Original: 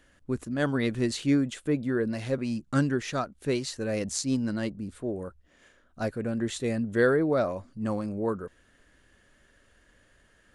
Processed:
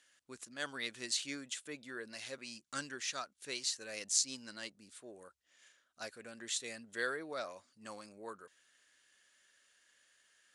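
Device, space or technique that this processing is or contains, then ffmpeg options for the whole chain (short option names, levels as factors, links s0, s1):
piezo pickup straight into a mixer: -af "lowpass=7000,aderivative,volume=1.78"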